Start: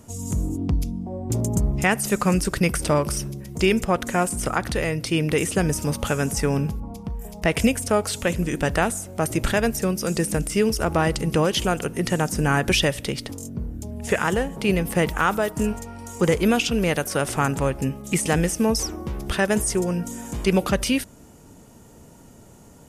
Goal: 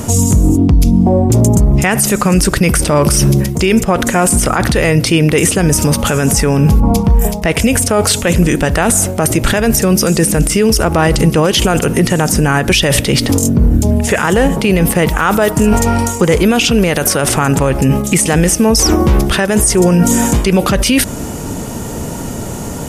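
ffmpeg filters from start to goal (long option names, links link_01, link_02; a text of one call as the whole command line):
ffmpeg -i in.wav -af "areverse,acompressor=threshold=-28dB:ratio=10,areverse,alimiter=level_in=27dB:limit=-1dB:release=50:level=0:latency=1,volume=-1dB" out.wav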